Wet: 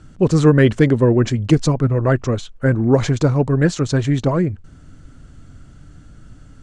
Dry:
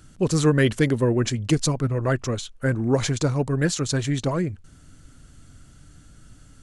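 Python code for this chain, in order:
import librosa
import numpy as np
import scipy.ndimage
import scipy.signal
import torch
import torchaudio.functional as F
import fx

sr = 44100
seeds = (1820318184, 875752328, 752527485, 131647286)

y = scipy.signal.sosfilt(scipy.signal.butter(4, 8700.0, 'lowpass', fs=sr, output='sos'), x)
y = fx.high_shelf(y, sr, hz=2500.0, db=-11.0)
y = F.gain(torch.from_numpy(y), 7.0).numpy()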